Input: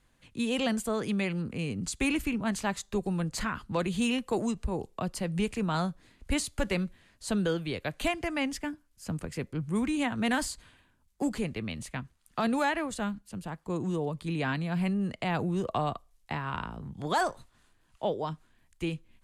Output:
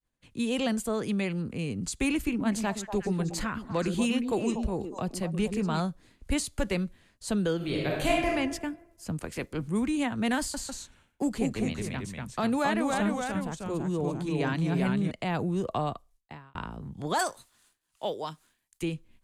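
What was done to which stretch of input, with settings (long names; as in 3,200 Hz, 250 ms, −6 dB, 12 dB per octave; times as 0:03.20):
0:02.16–0:05.80: echo through a band-pass that steps 120 ms, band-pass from 290 Hz, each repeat 1.4 octaves, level −3 dB
0:07.56–0:08.28: thrown reverb, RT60 1.1 s, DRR −3 dB
0:09.18–0:09.67: ceiling on every frequency bin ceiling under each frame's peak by 14 dB
0:10.39–0:15.11: delay with pitch and tempo change per echo 149 ms, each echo −1 semitone, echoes 2
0:15.86–0:16.55: fade out
0:17.19–0:18.83: spectral tilt +3 dB per octave
whole clip: bass and treble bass −5 dB, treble +3 dB; downward expander −58 dBFS; low-shelf EQ 390 Hz +8 dB; level −2 dB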